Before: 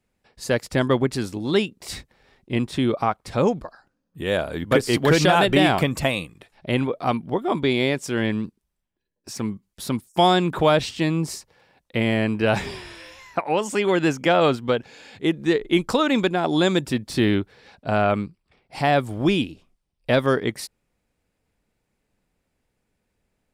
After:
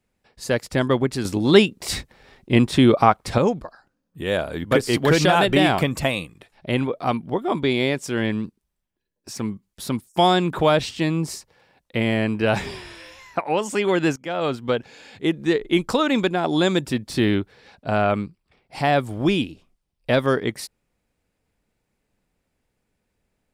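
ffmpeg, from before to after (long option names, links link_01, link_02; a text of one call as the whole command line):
ffmpeg -i in.wav -filter_complex "[0:a]asplit=4[link_01][link_02][link_03][link_04];[link_01]atrim=end=1.252[link_05];[link_02]atrim=start=1.248:end=3.382,asetpts=PTS-STARTPTS,volume=7dB[link_06];[link_03]atrim=start=3.378:end=14.16,asetpts=PTS-STARTPTS,afade=type=out:start_time=10.778:duration=0.004:curve=hsin:silence=0.105925[link_07];[link_04]atrim=start=14.16,asetpts=PTS-STARTPTS,afade=type=in:duration=0.6:silence=0.105925[link_08];[link_05][link_06]acrossfade=duration=0.004:curve1=hsin:curve2=hsin[link_09];[link_07][link_08]concat=n=2:v=0:a=1[link_10];[link_09][link_10]acrossfade=duration=0.004:curve1=hsin:curve2=hsin" out.wav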